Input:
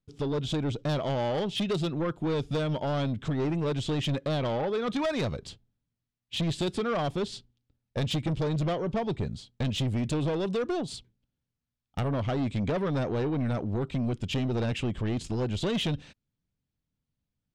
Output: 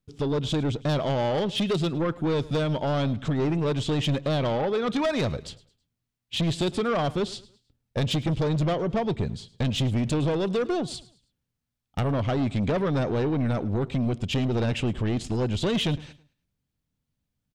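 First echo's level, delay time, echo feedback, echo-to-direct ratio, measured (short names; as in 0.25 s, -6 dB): -20.0 dB, 0.107 s, 36%, -19.5 dB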